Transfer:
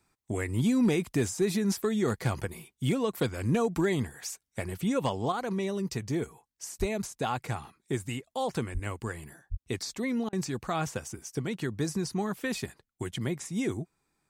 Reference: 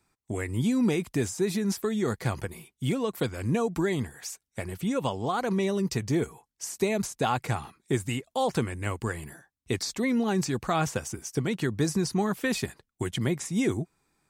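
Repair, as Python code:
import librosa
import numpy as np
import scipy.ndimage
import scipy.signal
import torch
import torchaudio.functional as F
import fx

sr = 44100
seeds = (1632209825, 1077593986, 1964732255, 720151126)

y = fx.fix_declip(x, sr, threshold_db=-18.5)
y = fx.highpass(y, sr, hz=140.0, slope=24, at=(6.79, 6.91), fade=0.02)
y = fx.highpass(y, sr, hz=140.0, slope=24, at=(8.73, 8.85), fade=0.02)
y = fx.highpass(y, sr, hz=140.0, slope=24, at=(9.5, 9.62), fade=0.02)
y = fx.fix_interpolate(y, sr, at_s=(10.29,), length_ms=37.0)
y = fx.fix_level(y, sr, at_s=5.32, step_db=4.5)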